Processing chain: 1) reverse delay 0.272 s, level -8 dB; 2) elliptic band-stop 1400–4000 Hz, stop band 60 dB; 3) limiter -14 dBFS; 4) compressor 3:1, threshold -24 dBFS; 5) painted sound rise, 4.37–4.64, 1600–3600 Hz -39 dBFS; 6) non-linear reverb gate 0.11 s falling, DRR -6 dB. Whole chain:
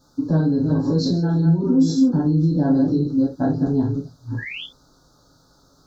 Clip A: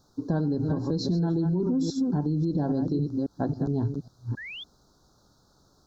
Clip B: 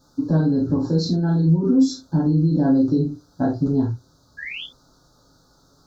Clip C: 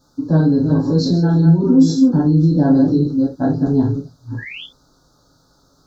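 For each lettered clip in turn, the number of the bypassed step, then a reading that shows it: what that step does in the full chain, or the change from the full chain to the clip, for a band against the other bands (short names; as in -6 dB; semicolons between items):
6, momentary loudness spread change -2 LU; 1, momentary loudness spread change +2 LU; 4, momentary loudness spread change +4 LU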